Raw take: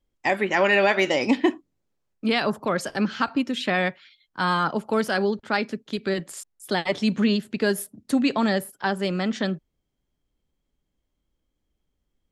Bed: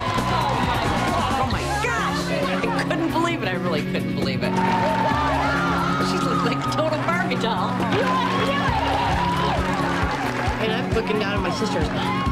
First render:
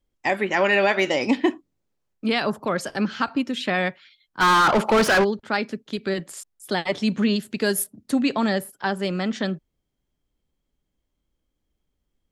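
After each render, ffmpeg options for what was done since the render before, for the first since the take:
-filter_complex "[0:a]asplit=3[a][b][c];[a]afade=t=out:st=4.4:d=0.02[d];[b]asplit=2[e][f];[f]highpass=f=720:p=1,volume=30dB,asoftclip=type=tanh:threshold=-10dB[g];[e][g]amix=inputs=2:normalize=0,lowpass=f=2.8k:p=1,volume=-6dB,afade=t=in:st=4.4:d=0.02,afade=t=out:st=5.23:d=0.02[h];[c]afade=t=in:st=5.23:d=0.02[i];[d][h][i]amix=inputs=3:normalize=0,asettb=1/sr,asplit=3[j][k][l];[j]atrim=end=7.364[m];[k]atrim=start=7.36:end=7.84,asetpts=PTS-STARTPTS,afade=t=in:d=0.004:c=qsin,afade=t=out:st=0.476:d=0.004:c=qsin,aemphasis=mode=production:type=cd[n];[l]atrim=start=7.836[o];[m][n]acrossfade=d=0.004:c1=hsin:c2=qsin[p];[p][o]acrossfade=d=0.004:c1=qsin:c2=hsin"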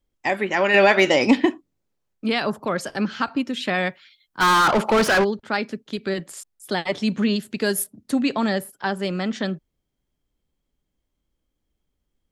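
-filter_complex "[0:a]asettb=1/sr,asplit=3[a][b][c];[a]atrim=end=0.744[d];[b]atrim=start=0.74:end=1.45,asetpts=PTS-STARTPTS,afade=t=in:d=0.004:c=qsin,afade=t=out:st=0.706:d=0.004:c=qsin,acontrast=31[e];[c]atrim=start=1.446[f];[d][e]acrossfade=d=0.004:c1=hsin:c2=qsin[g];[g][f]acrossfade=d=0.004:c1=qsin:c2=hsin,asettb=1/sr,asplit=3[h][i][j];[h]atrim=end=3.624[k];[i]atrim=start=3.62:end=4.74,asetpts=PTS-STARTPTS,afade=t=in:d=0.004:c=qsin,afade=t=out:st=1.116:d=0.004:c=qsin,highshelf=f=7.1k:g=6[l];[j]atrim=start=4.736[m];[k][l]acrossfade=d=0.004:c1=hsin:c2=qsin[n];[n][m]acrossfade=d=0.004:c1=qsin:c2=hsin"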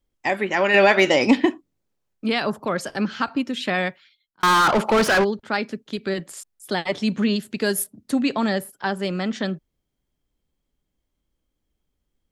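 -filter_complex "[0:a]asplit=2[a][b];[a]atrim=end=4.43,asetpts=PTS-STARTPTS,afade=t=out:st=3.8:d=0.63[c];[b]atrim=start=4.43,asetpts=PTS-STARTPTS,afade=t=in:d=0.004:c=hsin[d];[c][d]concat=n=2:v=0:a=1"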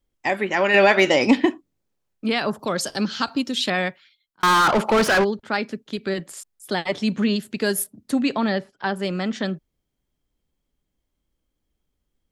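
-filter_complex "[0:a]asettb=1/sr,asplit=3[a][b][c];[a]atrim=end=2.594[d];[b]atrim=start=2.59:end=3.7,asetpts=PTS-STARTPTS,afade=t=in:d=0.004:c=qsin,afade=t=out:st=1.106:d=0.004:c=qsin,highshelf=f=3k:t=q:w=1.5:g=7.5[e];[c]atrim=start=3.696[f];[d][e]acrossfade=d=0.004:c1=hsin:c2=qsin[g];[g][f]acrossfade=d=0.004:c1=qsin:c2=hsin,asettb=1/sr,asplit=3[h][i][j];[h]atrim=end=8.374[k];[i]atrim=start=8.37:end=8.96,asetpts=PTS-STARTPTS,afade=t=in:d=0.004:c=qsin,afade=t=out:st=0.586:d=0.004:c=qsin,lowpass=f=5k:w=0.5412,lowpass=f=5k:w=1.3066[l];[j]atrim=start=8.956[m];[k][l]acrossfade=d=0.004:c1=hsin:c2=qsin[n];[n][m]acrossfade=d=0.004:c1=qsin:c2=hsin"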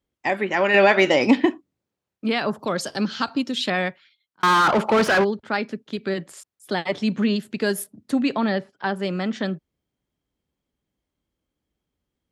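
-af "highpass=71,highshelf=f=5.9k:g=-8"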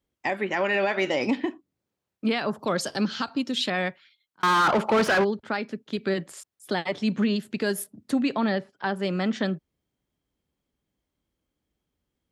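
-af "alimiter=limit=-15dB:level=0:latency=1:release=447"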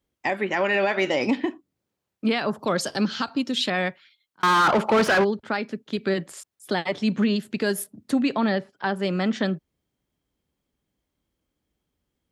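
-af "volume=2dB"

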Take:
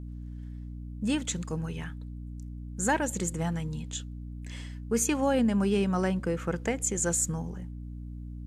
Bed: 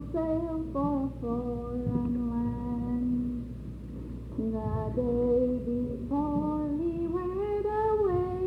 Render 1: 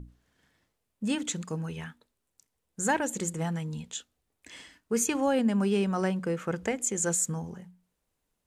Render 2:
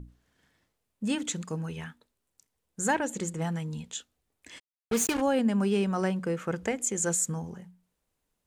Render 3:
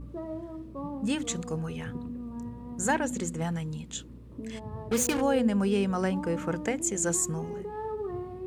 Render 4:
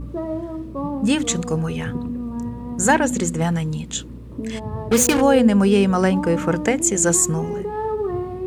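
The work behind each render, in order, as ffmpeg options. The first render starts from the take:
-af "bandreject=f=60:t=h:w=6,bandreject=f=120:t=h:w=6,bandreject=f=180:t=h:w=6,bandreject=f=240:t=h:w=6,bandreject=f=300:t=h:w=6"
-filter_complex "[0:a]asettb=1/sr,asplit=3[a][b][c];[a]atrim=end=2.954[d];[b]atrim=start=2.95:end=3.42,asetpts=PTS-STARTPTS,afade=t=in:d=0.004:c=qsin,afade=t=out:st=0.466:d=0.004:c=qsin,highshelf=f=10k:g=-11[e];[c]atrim=start=3.416[f];[d][e]acrossfade=d=0.004:c1=hsin:c2=qsin[g];[g][f]acrossfade=d=0.004:c1=qsin:c2=hsin,asplit=3[h][i][j];[h]afade=t=out:st=4.58:d=0.02[k];[i]acrusher=bits=4:mix=0:aa=0.5,afade=t=in:st=4.58:d=0.02,afade=t=out:st=5.2:d=0.02[l];[j]afade=t=in:st=5.2:d=0.02[m];[k][l][m]amix=inputs=3:normalize=0"
-filter_complex "[1:a]volume=-8dB[a];[0:a][a]amix=inputs=2:normalize=0"
-af "volume=10.5dB"

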